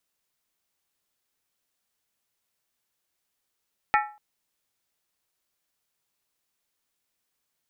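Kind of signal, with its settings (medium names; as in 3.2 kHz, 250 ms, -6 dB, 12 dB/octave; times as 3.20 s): skin hit length 0.24 s, lowest mode 839 Hz, modes 6, decay 0.38 s, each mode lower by 2.5 dB, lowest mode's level -17 dB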